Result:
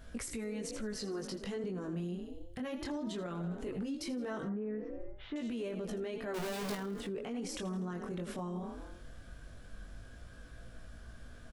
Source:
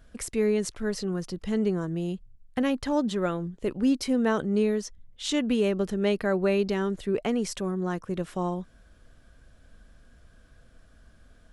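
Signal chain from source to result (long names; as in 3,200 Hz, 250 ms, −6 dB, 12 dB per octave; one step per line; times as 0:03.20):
0:06.34–0:06.75: sign of each sample alone
echo with shifted repeats 81 ms, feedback 51%, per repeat +34 Hz, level −14 dB
downward compressor 5 to 1, threshold −36 dBFS, peak gain reduction 15 dB
0:00.99–0:01.64: low-shelf EQ 140 Hz −11.5 dB
0:04.47–0:05.36: low-pass filter 1,900 Hz 24 dB per octave
chorus effect 0.18 Hz, delay 17 ms, depth 6.4 ms
brickwall limiter −39 dBFS, peak gain reduction 11.5 dB
level +7.5 dB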